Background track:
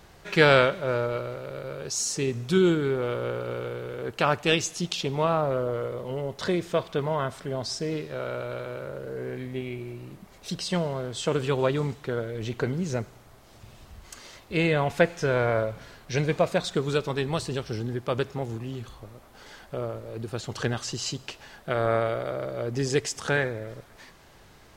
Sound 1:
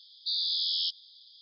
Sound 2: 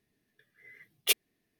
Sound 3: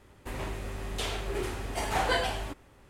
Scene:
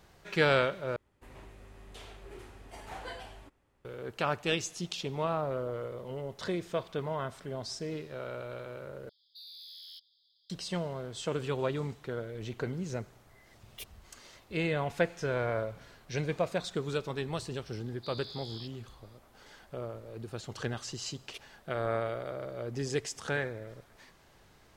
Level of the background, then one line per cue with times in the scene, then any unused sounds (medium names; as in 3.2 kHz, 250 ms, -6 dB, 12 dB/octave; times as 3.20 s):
background track -7.5 dB
0.96 s: replace with 3 -15 dB + treble shelf 4.7 kHz -3 dB
9.09 s: replace with 1 -16 dB + saturation -30 dBFS
12.71 s: add 2 -10 dB + peak limiter -21.5 dBFS
17.77 s: add 1 -17 dB
20.25 s: add 2 -18 dB + distance through air 84 m